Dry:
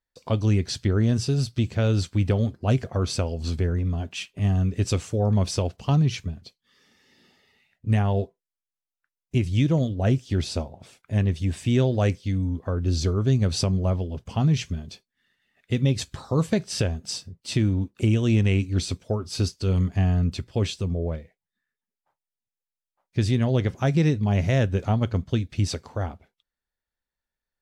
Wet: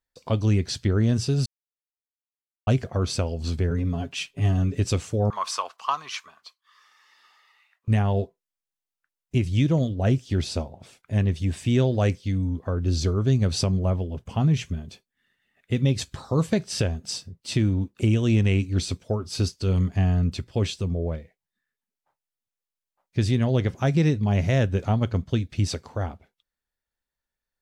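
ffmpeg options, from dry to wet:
ffmpeg -i in.wav -filter_complex "[0:a]asettb=1/sr,asplit=3[link_01][link_02][link_03];[link_01]atrim=end=3.704[link_04];[link_02]atrim=start=3.7:end=4.8,asetpts=PTS-STARTPTS,afade=type=in:duration=0.004:curve=qsin,afade=type=out:start_time=1.096:duration=0.004:curve=qsin,aecho=1:1:7.2:0.81,atrim=end_sample=48510[link_05];[link_03]atrim=start=4.796[link_06];[link_04][link_05]acrossfade=duration=0.004:curve1=hsin:curve2=qsin[link_07];[link_07][link_06]acrossfade=duration=0.004:curve1=qsin:curve2=hsin,asettb=1/sr,asplit=3[link_08][link_09][link_10];[link_08]atrim=end=5.304[link_11];[link_09]atrim=start=5.3:end=7.88,asetpts=PTS-STARTPTS,afade=type=in:duration=0.004:curve=qsin,afade=type=out:start_time=2.576:duration=0.004:curve=qsin,highpass=frequency=1100:width_type=q:width=7.1[link_12];[link_10]atrim=start=7.876[link_13];[link_11][link_12]acrossfade=duration=0.004:curve1=hsin:curve2=qsin[link_14];[link_14][link_13]acrossfade=duration=0.004:curve1=qsin:curve2=hsin,asettb=1/sr,asplit=3[link_15][link_16][link_17];[link_15]atrim=end=13.794[link_18];[link_16]atrim=start=13.79:end=15.76,asetpts=PTS-STARTPTS,afade=type=in:duration=0.004:curve=qsin,afade=type=out:start_time=1.966:duration=0.004:curve=qsin,equalizer=frequency=4800:width_type=o:width=0.85:gain=-5.5[link_19];[link_17]atrim=start=15.756[link_20];[link_18][link_19]acrossfade=duration=0.004:curve1=hsin:curve2=qsin[link_21];[link_21][link_20]acrossfade=duration=0.004:curve1=qsin:curve2=hsin,asplit=3[link_22][link_23][link_24];[link_22]atrim=end=1.46,asetpts=PTS-STARTPTS,afade=type=out:start_time=1.456:duration=0.004:curve=hsin[link_25];[link_23]atrim=start=1.46:end=2.67,asetpts=PTS-STARTPTS,volume=0[link_26];[link_24]atrim=start=2.67,asetpts=PTS-STARTPTS,afade=type=in:duration=0.004:curve=hsin[link_27];[link_25][link_26][link_27]concat=n=3:v=0:a=1" out.wav

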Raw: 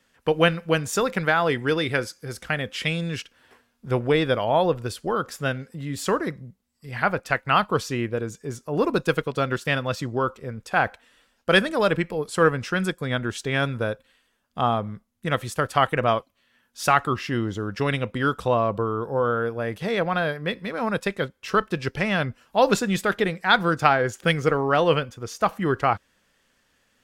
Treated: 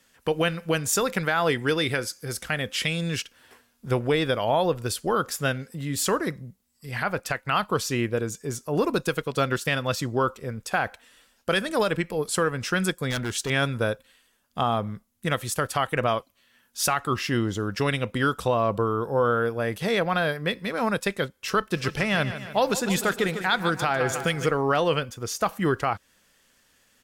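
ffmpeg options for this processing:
ffmpeg -i in.wav -filter_complex "[0:a]asettb=1/sr,asplit=3[link_01][link_02][link_03];[link_01]atrim=end=13.104[link_04];[link_02]atrim=start=13.1:end=13.5,asetpts=PTS-STARTPTS,afade=type=in:duration=0.004:curve=qsin,afade=type=out:start_time=0.396:duration=0.004:curve=qsin,asoftclip=type=hard:threshold=-25dB[link_05];[link_03]atrim=start=13.496[link_06];[link_04][link_05]acrossfade=duration=0.004:curve1=hsin:curve2=qsin[link_07];[link_07][link_06]acrossfade=duration=0.004:curve1=qsin:curve2=hsin,asplit=3[link_08][link_09][link_10];[link_08]afade=type=out:start_time=21.75:duration=0.02[link_11];[link_09]aecho=1:1:150|300|450|600|750|900:0.224|0.125|0.0702|0.0393|0.022|0.0123,afade=type=in:start_time=21.75:duration=0.02,afade=type=out:start_time=24.45:duration=0.02[link_12];[link_10]afade=type=in:start_time=24.45:duration=0.02[link_13];[link_11][link_12][link_13]amix=inputs=3:normalize=0,aemphasis=mode=production:type=cd,alimiter=limit=-13.5dB:level=0:latency=1:release=208,volume=1dB" out.wav

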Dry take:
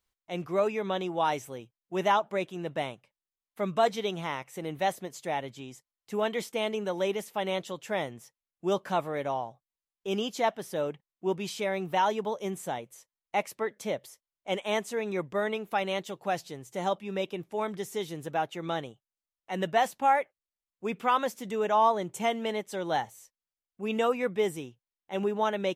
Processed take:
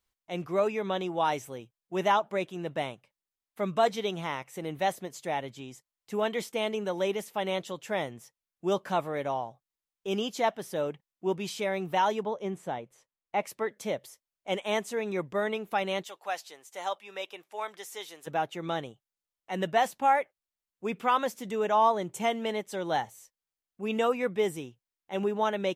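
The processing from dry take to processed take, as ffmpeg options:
ffmpeg -i in.wav -filter_complex "[0:a]asettb=1/sr,asplit=3[link_01][link_02][link_03];[link_01]atrim=end=12.234[link_04];[link_02]atrim=start=12.23:end=13.43,asetpts=PTS-STARTPTS,afade=type=in:duration=0.004:curve=qsin,afade=type=out:start_time=1.196:duration=0.004:curve=qsin,aemphasis=mode=reproduction:type=75kf[link_05];[link_03]atrim=start=13.426[link_06];[link_04][link_05]acrossfade=duration=0.004:curve1=hsin:curve2=qsin[link_07];[link_07][link_06]acrossfade=duration=0.004:curve1=qsin:curve2=hsin,asplit=3[link_08][link_09][link_10];[link_08]afade=type=out:start_time=16.03:duration=0.02[link_11];[link_09]highpass=750,afade=type=in:start_time=16.03:duration=0.02,afade=type=out:start_time=18.26:duration=0.02[link_12];[link_10]afade=type=in:start_time=18.26:duration=0.02[link_13];[link_11][link_12][link_13]amix=inputs=3:normalize=0" out.wav

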